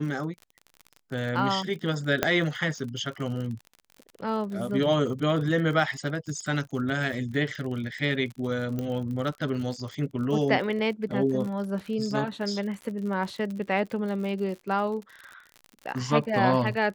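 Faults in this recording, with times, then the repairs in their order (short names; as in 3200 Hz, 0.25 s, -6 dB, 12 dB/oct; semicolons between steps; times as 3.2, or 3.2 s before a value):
crackle 53/s -35 dBFS
2.23 pop -7 dBFS
8.79 pop -19 dBFS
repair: de-click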